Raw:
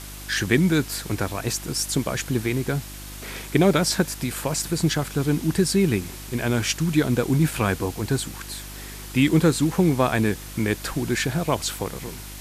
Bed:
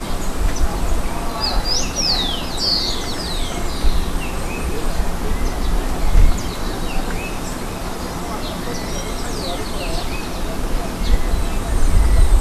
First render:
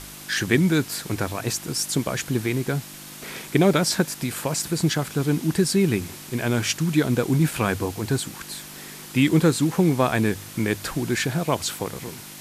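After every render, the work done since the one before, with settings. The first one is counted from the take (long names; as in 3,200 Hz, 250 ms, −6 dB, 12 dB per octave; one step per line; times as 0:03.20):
hum removal 50 Hz, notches 2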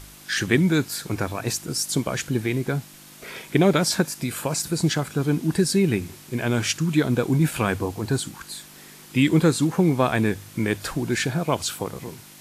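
noise reduction from a noise print 6 dB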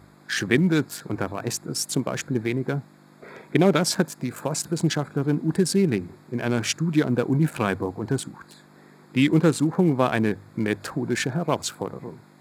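adaptive Wiener filter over 15 samples
high-pass filter 120 Hz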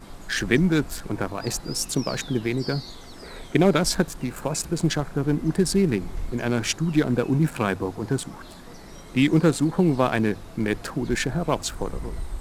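mix in bed −19.5 dB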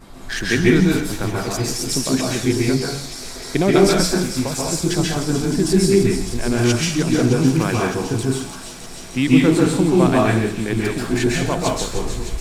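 delay with a high-pass on its return 306 ms, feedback 85%, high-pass 3,600 Hz, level −8 dB
dense smooth reverb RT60 0.58 s, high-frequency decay 0.9×, pre-delay 120 ms, DRR −3.5 dB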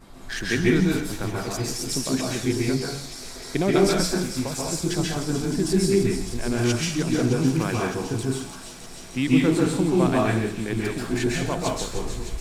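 level −5.5 dB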